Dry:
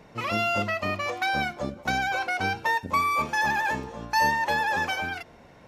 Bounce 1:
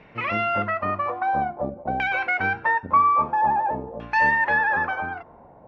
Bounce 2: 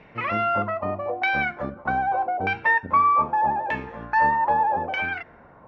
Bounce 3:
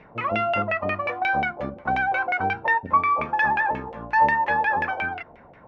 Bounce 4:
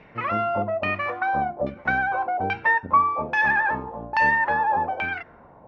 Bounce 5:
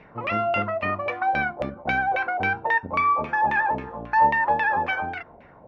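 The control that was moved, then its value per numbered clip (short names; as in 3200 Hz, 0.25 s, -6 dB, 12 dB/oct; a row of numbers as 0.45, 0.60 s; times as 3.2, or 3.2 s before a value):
LFO low-pass, rate: 0.5, 0.81, 5.6, 1.2, 3.7 Hz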